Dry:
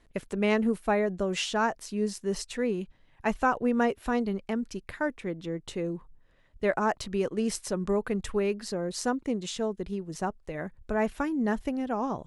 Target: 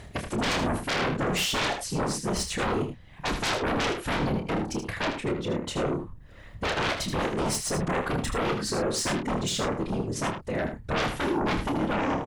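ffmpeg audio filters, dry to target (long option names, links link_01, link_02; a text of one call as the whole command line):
ffmpeg -i in.wav -filter_complex "[0:a]afftfilt=real='hypot(re,im)*cos(2*PI*random(0))':imag='hypot(re,im)*sin(2*PI*random(1))':win_size=512:overlap=0.75,aeval=exprs='0.141*sin(PI/2*7.08*val(0)/0.141)':channel_layout=same,acompressor=mode=upward:threshold=-30dB:ratio=2.5,asplit=2[link_01][link_02];[link_02]adelay=28,volume=-7dB[link_03];[link_01][link_03]amix=inputs=2:normalize=0,aecho=1:1:78:0.398,volume=-7.5dB" out.wav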